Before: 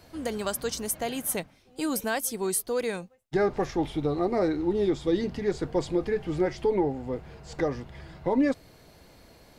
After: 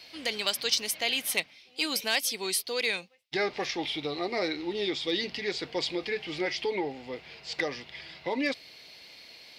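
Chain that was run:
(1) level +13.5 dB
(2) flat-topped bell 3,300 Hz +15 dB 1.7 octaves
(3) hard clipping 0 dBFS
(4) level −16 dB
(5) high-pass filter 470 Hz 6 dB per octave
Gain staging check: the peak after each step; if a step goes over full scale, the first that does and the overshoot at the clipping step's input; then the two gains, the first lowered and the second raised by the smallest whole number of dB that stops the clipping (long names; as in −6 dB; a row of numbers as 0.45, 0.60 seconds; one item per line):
−2.0, +6.0, 0.0, −16.0, −13.5 dBFS
step 2, 6.0 dB
step 1 +7.5 dB, step 4 −10 dB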